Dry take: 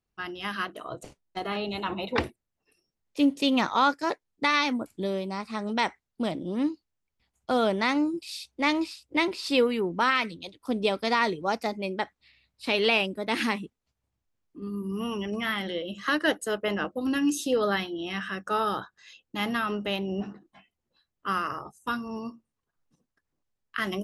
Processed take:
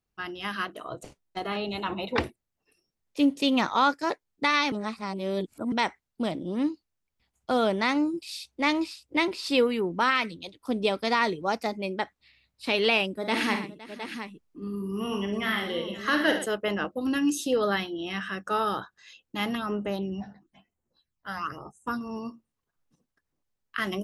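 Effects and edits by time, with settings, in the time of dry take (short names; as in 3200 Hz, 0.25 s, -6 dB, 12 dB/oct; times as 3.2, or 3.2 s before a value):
4.72–5.72 reverse
13.14–16.46 tapped delay 41/54/71/121/514/713 ms -10/-9.5/-11.5/-12.5/-18/-9.5 dB
19.55–22.01 phaser stages 8, 1 Hz, lowest notch 340–4700 Hz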